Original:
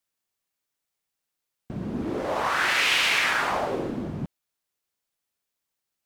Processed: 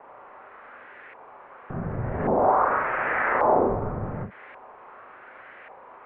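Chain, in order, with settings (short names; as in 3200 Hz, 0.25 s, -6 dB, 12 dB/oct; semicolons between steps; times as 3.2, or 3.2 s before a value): switching spikes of -27 dBFS; limiter -21.5 dBFS, peak gain reduction 11 dB; mistuned SSB -360 Hz 170–2800 Hz; compressor 2:1, threshold -34 dBFS, peak gain reduction 4.5 dB; bell 530 Hz +12.5 dB 2 oct; on a send at -3 dB: reverb, pre-delay 30 ms; on the sum: LFO low-pass saw up 0.88 Hz 930–1900 Hz; ending taper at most 200 dB/s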